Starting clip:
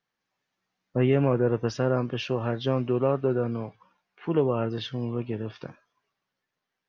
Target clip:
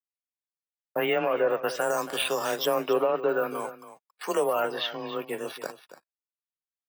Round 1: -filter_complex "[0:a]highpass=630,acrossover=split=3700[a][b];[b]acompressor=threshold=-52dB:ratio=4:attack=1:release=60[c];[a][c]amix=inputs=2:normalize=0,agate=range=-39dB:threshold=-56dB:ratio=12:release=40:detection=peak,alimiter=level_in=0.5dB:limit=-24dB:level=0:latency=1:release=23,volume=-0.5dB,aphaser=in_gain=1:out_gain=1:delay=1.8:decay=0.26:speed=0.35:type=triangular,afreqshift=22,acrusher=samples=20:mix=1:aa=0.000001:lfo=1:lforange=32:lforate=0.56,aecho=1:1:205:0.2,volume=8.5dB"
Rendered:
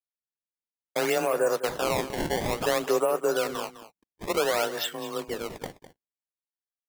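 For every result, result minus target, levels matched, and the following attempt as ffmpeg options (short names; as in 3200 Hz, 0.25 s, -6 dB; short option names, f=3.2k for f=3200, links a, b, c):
decimation with a swept rate: distortion +11 dB; echo 73 ms early
-filter_complex "[0:a]highpass=630,acrossover=split=3700[a][b];[b]acompressor=threshold=-52dB:ratio=4:attack=1:release=60[c];[a][c]amix=inputs=2:normalize=0,agate=range=-39dB:threshold=-56dB:ratio=12:release=40:detection=peak,alimiter=level_in=0.5dB:limit=-24dB:level=0:latency=1:release=23,volume=-0.5dB,aphaser=in_gain=1:out_gain=1:delay=1.8:decay=0.26:speed=0.35:type=triangular,afreqshift=22,acrusher=samples=4:mix=1:aa=0.000001:lfo=1:lforange=6.4:lforate=0.56,aecho=1:1:205:0.2,volume=8.5dB"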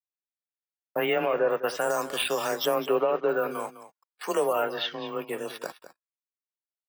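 echo 73 ms early
-filter_complex "[0:a]highpass=630,acrossover=split=3700[a][b];[b]acompressor=threshold=-52dB:ratio=4:attack=1:release=60[c];[a][c]amix=inputs=2:normalize=0,agate=range=-39dB:threshold=-56dB:ratio=12:release=40:detection=peak,alimiter=level_in=0.5dB:limit=-24dB:level=0:latency=1:release=23,volume=-0.5dB,aphaser=in_gain=1:out_gain=1:delay=1.8:decay=0.26:speed=0.35:type=triangular,afreqshift=22,acrusher=samples=4:mix=1:aa=0.000001:lfo=1:lforange=6.4:lforate=0.56,aecho=1:1:278:0.2,volume=8.5dB"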